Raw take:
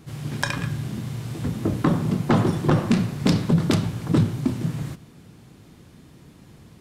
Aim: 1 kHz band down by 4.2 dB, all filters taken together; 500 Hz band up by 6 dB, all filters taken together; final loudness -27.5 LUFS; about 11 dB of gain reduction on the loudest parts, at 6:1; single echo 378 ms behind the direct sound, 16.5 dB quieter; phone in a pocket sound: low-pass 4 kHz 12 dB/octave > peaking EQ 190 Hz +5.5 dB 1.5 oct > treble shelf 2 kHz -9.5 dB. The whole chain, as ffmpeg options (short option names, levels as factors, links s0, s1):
-af "equalizer=f=500:t=o:g=8,equalizer=f=1000:t=o:g=-6.5,acompressor=threshold=0.0562:ratio=6,lowpass=4000,equalizer=f=190:t=o:w=1.5:g=5.5,highshelf=f=2000:g=-9.5,aecho=1:1:378:0.15,volume=0.891"